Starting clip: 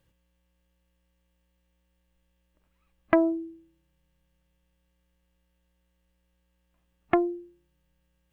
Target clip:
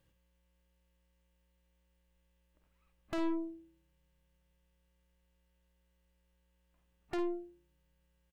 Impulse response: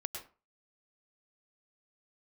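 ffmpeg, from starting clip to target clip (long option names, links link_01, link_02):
-af "aeval=exprs='(tanh(35.5*val(0)+0.45)-tanh(0.45))/35.5':channel_layout=same,aecho=1:1:52|62:0.282|0.141,volume=-1.5dB"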